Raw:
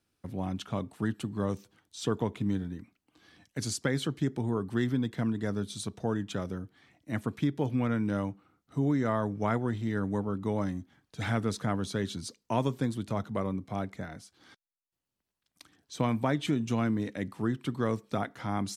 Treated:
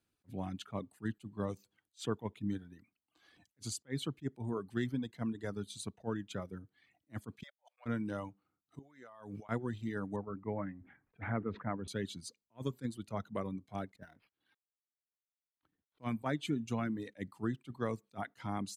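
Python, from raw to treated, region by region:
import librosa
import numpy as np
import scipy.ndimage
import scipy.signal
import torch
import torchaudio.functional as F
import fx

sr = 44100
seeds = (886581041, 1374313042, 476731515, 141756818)

y = fx.chain(x, sr, fx.cheby1_highpass(hz=550.0, order=6),
    fx.leveller(passes=1),
    fx.level_steps(step_db=24), at=(7.43, 7.86))
y = fx.chain(y, sr, fx.low_shelf(hz=410.0, db=-10.5),
    fx.over_compress(threshold_db=-45.0, ratio=-1.0), at=(8.79, 9.49))
y = fx.chain(y, sr, fx.cheby1_lowpass(hz=2200.0, order=4),
    fx.sustainer(db_per_s=100.0), at=(10.16, 11.88))
y = fx.chain(y, sr, fx.law_mismatch(coded='A'),
    fx.notch(hz=1200.0, q=14.0),
    fx.resample_linear(factor=6), at=(13.96, 16.04))
y = fx.dereverb_blind(y, sr, rt60_s=1.1)
y = fx.notch(y, sr, hz=5500.0, q=8.9)
y = fx.attack_slew(y, sr, db_per_s=450.0)
y = y * librosa.db_to_amplitude(-5.0)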